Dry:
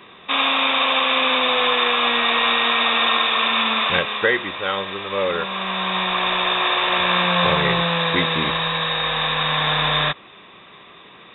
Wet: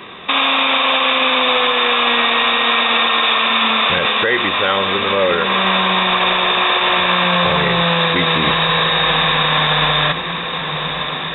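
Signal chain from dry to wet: echo that smears into a reverb 1145 ms, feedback 62%, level -14 dB; loudness maximiser +15 dB; trim -5 dB

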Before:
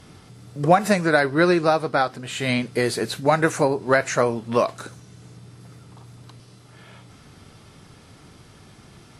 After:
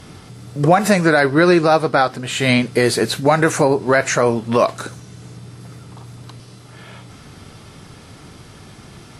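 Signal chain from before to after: peak limiter -10.5 dBFS, peak gain reduction 6 dB; trim +7.5 dB

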